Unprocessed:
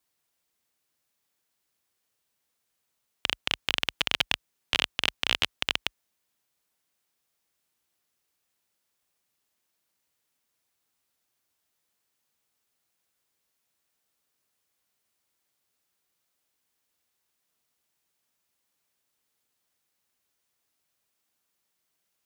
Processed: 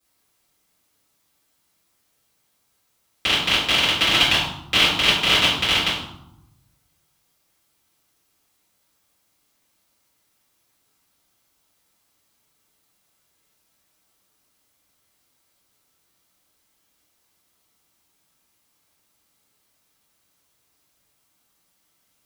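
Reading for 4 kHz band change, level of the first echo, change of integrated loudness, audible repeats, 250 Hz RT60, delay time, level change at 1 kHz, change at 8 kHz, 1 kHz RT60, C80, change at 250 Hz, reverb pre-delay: +10.5 dB, no echo, +10.5 dB, no echo, 1.2 s, no echo, +12.0 dB, +10.5 dB, 0.85 s, 6.0 dB, +14.5 dB, 3 ms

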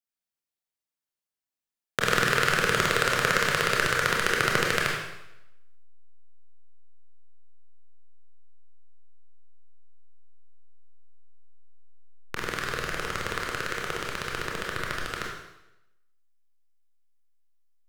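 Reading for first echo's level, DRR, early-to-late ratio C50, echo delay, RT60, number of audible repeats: no echo, -2.0 dB, 2.0 dB, no echo, 0.85 s, no echo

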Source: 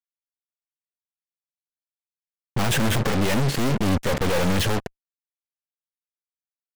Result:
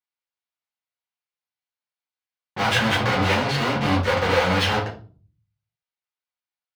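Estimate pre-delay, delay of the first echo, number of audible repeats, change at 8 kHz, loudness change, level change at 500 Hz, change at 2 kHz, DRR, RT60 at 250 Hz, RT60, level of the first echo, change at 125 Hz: 4 ms, no echo, no echo, -5.5 dB, +2.0 dB, +2.0 dB, +6.0 dB, -5.5 dB, 0.70 s, 0.40 s, no echo, -1.5 dB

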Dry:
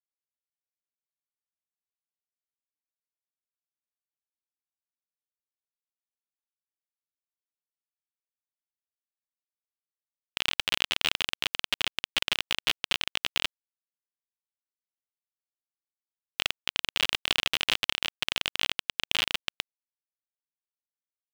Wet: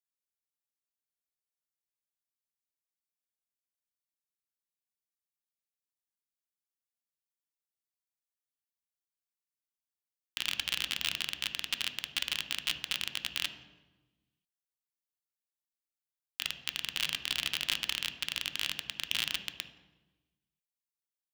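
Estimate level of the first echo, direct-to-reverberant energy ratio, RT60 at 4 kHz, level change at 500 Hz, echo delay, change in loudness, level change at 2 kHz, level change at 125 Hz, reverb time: no echo, 5.0 dB, 0.80 s, -13.5 dB, no echo, -5.0 dB, -6.0 dB, -5.0 dB, 1.2 s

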